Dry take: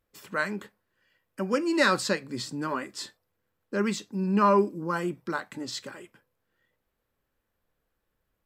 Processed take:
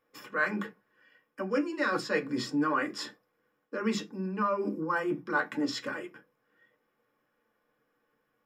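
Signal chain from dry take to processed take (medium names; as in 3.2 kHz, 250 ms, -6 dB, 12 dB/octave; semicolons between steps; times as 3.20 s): reverse; compression 10:1, threshold -32 dBFS, peak gain reduction 15 dB; reverse; reverberation RT60 0.15 s, pre-delay 3 ms, DRR 2 dB; trim -4 dB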